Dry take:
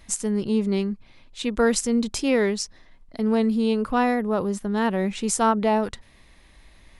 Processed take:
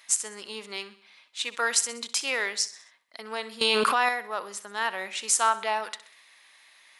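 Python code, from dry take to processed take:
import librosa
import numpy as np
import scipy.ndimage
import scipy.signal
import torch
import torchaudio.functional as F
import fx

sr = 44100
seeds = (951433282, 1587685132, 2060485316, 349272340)

y = scipy.signal.sosfilt(scipy.signal.butter(2, 1200.0, 'highpass', fs=sr, output='sos'), x)
y = fx.echo_feedback(y, sr, ms=64, feedback_pct=49, wet_db=-16.0)
y = fx.env_flatten(y, sr, amount_pct=100, at=(3.61, 4.09))
y = y * librosa.db_to_amplitude(3.0)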